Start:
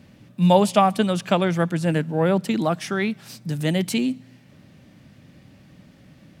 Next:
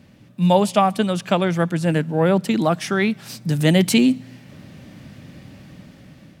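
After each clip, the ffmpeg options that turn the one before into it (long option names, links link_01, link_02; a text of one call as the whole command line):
ffmpeg -i in.wav -af "dynaudnorm=framelen=630:gausssize=5:maxgain=11.5dB" out.wav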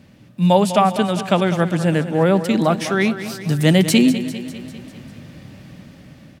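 ffmpeg -i in.wav -af "aecho=1:1:199|398|597|796|995|1194:0.251|0.146|0.0845|0.049|0.0284|0.0165,volume=1.5dB" out.wav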